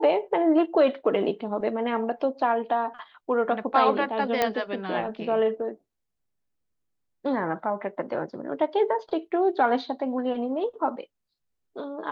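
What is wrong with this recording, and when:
4.42 s: pop -8 dBFS

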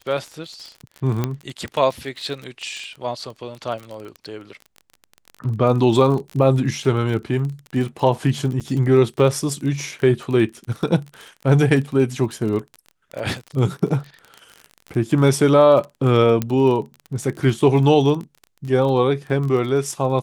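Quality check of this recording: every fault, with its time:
crackle 29 per s -27 dBFS
1.24 s: pop -8 dBFS
8.60–8.61 s: dropout 7.1 ms
16.42 s: pop -8 dBFS

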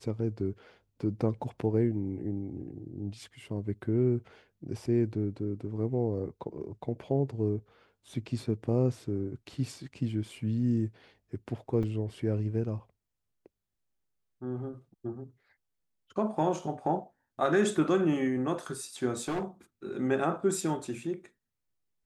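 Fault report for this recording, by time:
11.83 s: dropout 4.9 ms
19.20–19.44 s: clipped -28 dBFS

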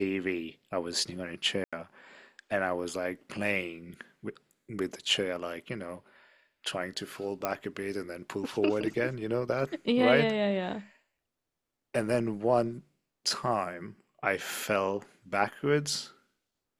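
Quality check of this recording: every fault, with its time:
1.64–1.73 s: dropout 86 ms
7.45 s: pop -14 dBFS

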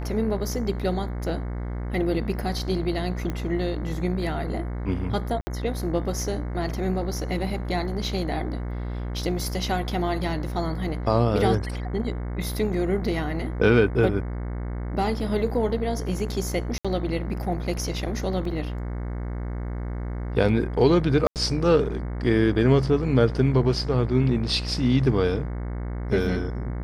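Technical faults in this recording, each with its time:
buzz 60 Hz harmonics 37 -30 dBFS
3.30 s: pop -17 dBFS
5.41–5.47 s: dropout 60 ms
16.78–16.85 s: dropout 66 ms
18.45 s: dropout 2.7 ms
21.27–21.36 s: dropout 88 ms

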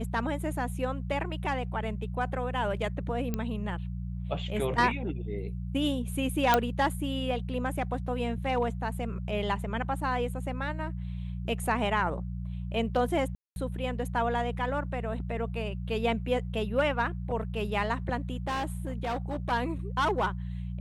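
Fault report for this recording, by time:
hum 60 Hz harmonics 3 -35 dBFS
3.34 s: pop -17 dBFS
6.54 s: pop -8 dBFS
13.35–13.56 s: dropout 211 ms
18.47–19.52 s: clipped -27.5 dBFS

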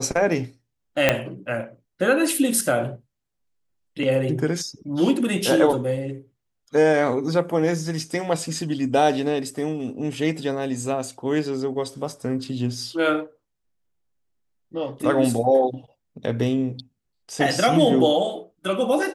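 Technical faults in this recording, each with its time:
1.09 s: pop -2 dBFS

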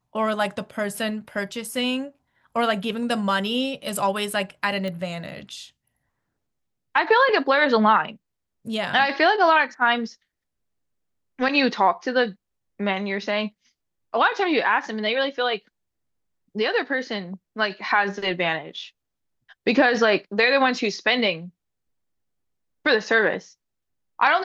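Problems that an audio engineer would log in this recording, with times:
4.88 s: pop -19 dBFS

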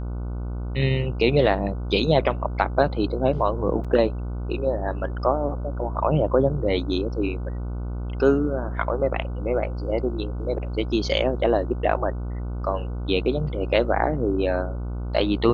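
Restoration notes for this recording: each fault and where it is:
buzz 60 Hz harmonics 25 -29 dBFS
3.84–3.85 s: dropout 6.3 ms

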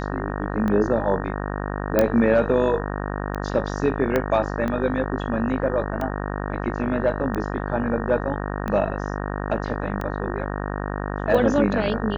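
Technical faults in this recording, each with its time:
buzz 50 Hz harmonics 37 -28 dBFS
tick 45 rpm -16 dBFS
1.99 s: pop -5 dBFS
4.16 s: pop -9 dBFS

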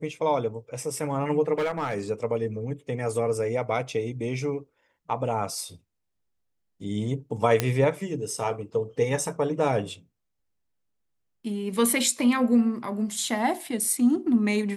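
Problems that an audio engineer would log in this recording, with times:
1.58–1.99 s: clipped -22.5 dBFS
7.60 s: pop -7 dBFS

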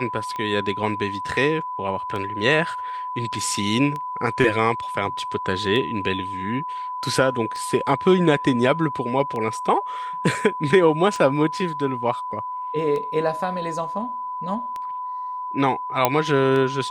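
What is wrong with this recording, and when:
tick 33 1/3 rpm -18 dBFS
whine 1 kHz -27 dBFS
16.05 s: pop -2 dBFS

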